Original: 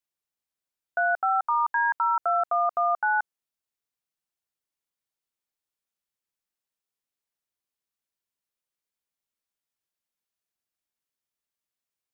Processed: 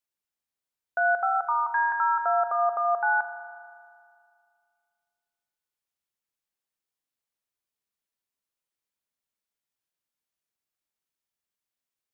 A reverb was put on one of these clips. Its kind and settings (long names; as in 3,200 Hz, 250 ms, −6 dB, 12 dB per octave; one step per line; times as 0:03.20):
spring reverb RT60 2.2 s, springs 37 ms, chirp 40 ms, DRR 8 dB
level −1 dB